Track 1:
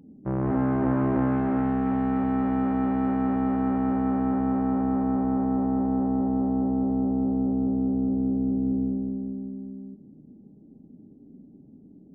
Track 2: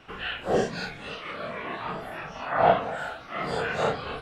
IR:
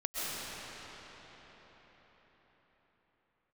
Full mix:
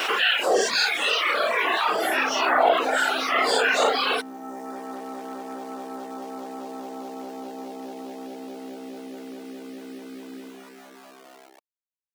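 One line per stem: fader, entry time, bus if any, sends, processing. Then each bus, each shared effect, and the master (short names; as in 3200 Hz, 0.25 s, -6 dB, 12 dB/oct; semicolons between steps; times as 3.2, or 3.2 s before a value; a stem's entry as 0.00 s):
0.0 dB, 1.65 s, no send, dry
-0.5 dB, 0.00 s, no send, high shelf 2700 Hz +11 dB; fast leveller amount 70%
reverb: off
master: sample gate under -36 dBFS; reverb removal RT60 1.1 s; HPF 350 Hz 24 dB/oct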